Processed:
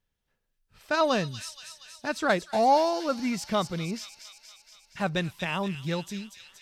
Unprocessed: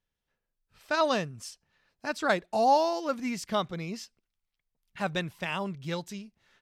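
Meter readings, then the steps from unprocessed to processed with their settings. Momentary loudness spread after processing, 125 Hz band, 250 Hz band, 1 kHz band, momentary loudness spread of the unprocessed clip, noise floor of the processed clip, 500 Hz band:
20 LU, +4.5 dB, +3.5 dB, +1.5 dB, 18 LU, -79 dBFS, +2.0 dB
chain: low shelf 230 Hz +4 dB; in parallel at -10.5 dB: soft clip -26 dBFS, distortion -9 dB; on the sum: thin delay 0.236 s, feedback 67%, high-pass 3100 Hz, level -6 dB

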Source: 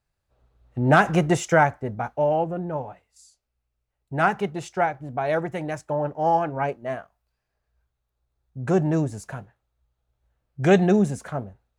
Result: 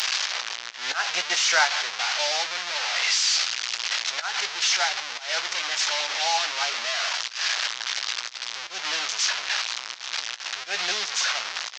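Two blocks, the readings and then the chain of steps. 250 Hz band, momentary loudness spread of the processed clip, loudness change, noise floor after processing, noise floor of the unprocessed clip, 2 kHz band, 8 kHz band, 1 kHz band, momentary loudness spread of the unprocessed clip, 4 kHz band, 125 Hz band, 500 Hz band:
under -25 dB, 9 LU, -1.0 dB, -38 dBFS, -80 dBFS, +4.5 dB, +16.0 dB, -5.0 dB, 15 LU, +21.5 dB, under -35 dB, -14.0 dB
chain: delta modulation 32 kbps, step -20 dBFS; HPF 880 Hz 12 dB/oct; tilt shelf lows -9 dB, about 1200 Hz; auto swell 0.186 s; doubler 17 ms -11 dB

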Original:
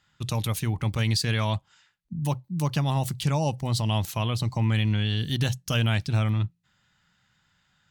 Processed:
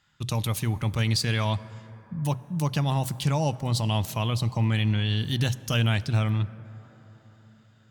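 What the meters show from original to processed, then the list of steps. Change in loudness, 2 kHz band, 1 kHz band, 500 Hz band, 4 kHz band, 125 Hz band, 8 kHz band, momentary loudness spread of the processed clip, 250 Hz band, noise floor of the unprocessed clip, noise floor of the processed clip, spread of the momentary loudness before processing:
0.0 dB, 0.0 dB, 0.0 dB, 0.0 dB, 0.0 dB, 0.0 dB, 0.0 dB, 8 LU, 0.0 dB, -70 dBFS, -58 dBFS, 6 LU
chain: plate-style reverb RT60 4.9 s, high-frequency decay 0.3×, DRR 16.5 dB

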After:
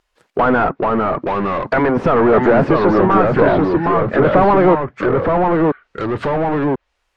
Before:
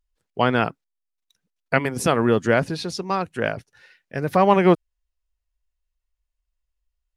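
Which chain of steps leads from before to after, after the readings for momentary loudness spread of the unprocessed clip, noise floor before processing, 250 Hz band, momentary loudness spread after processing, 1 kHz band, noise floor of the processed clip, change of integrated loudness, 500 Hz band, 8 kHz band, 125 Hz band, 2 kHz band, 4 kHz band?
11 LU, -81 dBFS, +9.0 dB, 8 LU, +9.0 dB, -70 dBFS, +6.0 dB, +9.5 dB, under -15 dB, +7.0 dB, +5.5 dB, n/a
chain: overdrive pedal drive 36 dB, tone 1400 Hz, clips at -2.5 dBFS; echoes that change speed 0.385 s, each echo -2 st, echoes 2; treble ducked by the level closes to 1500 Hz, closed at -12 dBFS; gain -1.5 dB

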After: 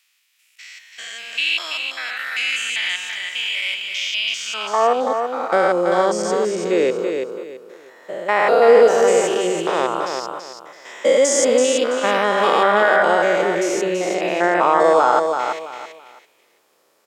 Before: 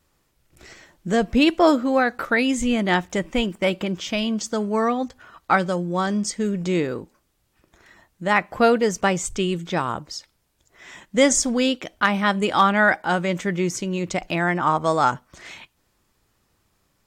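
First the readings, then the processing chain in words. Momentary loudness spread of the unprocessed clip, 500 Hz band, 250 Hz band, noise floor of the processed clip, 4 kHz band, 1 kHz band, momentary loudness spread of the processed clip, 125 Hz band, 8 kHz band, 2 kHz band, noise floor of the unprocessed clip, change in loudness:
10 LU, +7.5 dB, -5.0 dB, -61 dBFS, +6.0 dB, +4.0 dB, 14 LU, -10.0 dB, +2.5 dB, +3.0 dB, -69 dBFS, +3.5 dB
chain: stepped spectrum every 0.2 s; in parallel at -1 dB: limiter -18.5 dBFS, peak gain reduction 8.5 dB; on the sum: high-pass sweep 2500 Hz -> 470 Hz, 4.29–5.01; feedback echo 0.332 s, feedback 27%, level -6 dB; gain +1.5 dB

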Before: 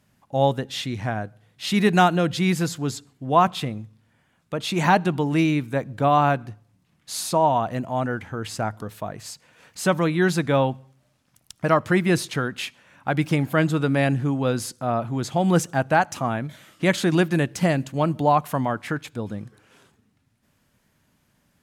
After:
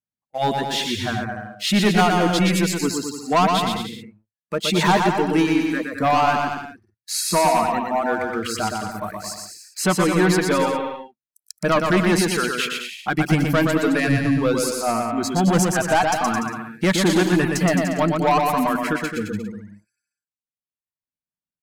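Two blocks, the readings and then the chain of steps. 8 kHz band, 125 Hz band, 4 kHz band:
+7.5 dB, 0.0 dB, +6.5 dB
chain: spectral noise reduction 29 dB; notches 60/120 Hz; in parallel at -5 dB: wavefolder -19 dBFS; on the sum: sample leveller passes 2; reverb removal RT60 1.3 s; on a send: bouncing-ball echo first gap 0.12 s, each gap 0.8×, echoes 5; on the sum: gain -5.5 dB

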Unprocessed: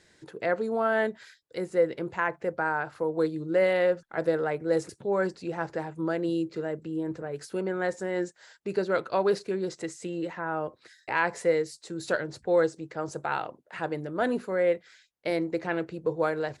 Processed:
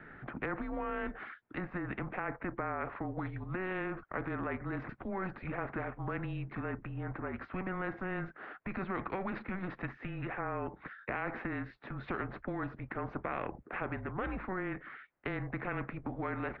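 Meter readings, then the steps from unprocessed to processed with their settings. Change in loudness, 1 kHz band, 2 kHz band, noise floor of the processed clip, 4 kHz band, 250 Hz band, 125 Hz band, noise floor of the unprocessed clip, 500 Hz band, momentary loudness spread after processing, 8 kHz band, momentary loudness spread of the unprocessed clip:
-10.0 dB, -7.0 dB, -7.0 dB, -60 dBFS, -14.5 dB, -7.0 dB, -0.5 dB, -64 dBFS, -15.0 dB, 4 LU, under -30 dB, 10 LU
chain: mistuned SSB -190 Hz 210–2300 Hz; limiter -23.5 dBFS, peak gain reduction 10.5 dB; spectral compressor 2:1; gain +1 dB

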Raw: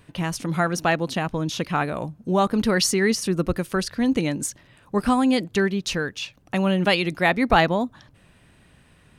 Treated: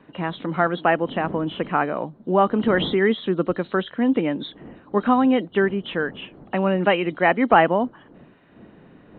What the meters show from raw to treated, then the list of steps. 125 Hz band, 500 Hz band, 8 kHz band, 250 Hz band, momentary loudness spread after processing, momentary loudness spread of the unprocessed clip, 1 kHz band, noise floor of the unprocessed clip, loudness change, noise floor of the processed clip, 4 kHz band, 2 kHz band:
-3.0 dB, +3.0 dB, under -40 dB, +0.5 dB, 11 LU, 9 LU, +3.0 dB, -56 dBFS, +1.0 dB, -52 dBFS, -4.5 dB, +0.5 dB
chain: nonlinear frequency compression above 2800 Hz 4:1; wind noise 170 Hz -37 dBFS; three-band isolator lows -22 dB, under 190 Hz, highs -23 dB, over 2200 Hz; gain +3.5 dB

